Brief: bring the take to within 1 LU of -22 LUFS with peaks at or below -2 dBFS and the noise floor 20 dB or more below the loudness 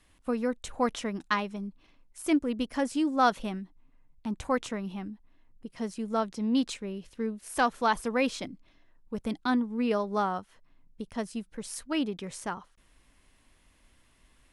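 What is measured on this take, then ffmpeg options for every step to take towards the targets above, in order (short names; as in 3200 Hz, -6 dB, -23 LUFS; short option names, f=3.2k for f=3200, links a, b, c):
loudness -31.0 LUFS; peak -12.5 dBFS; loudness target -22.0 LUFS
-> -af "volume=9dB"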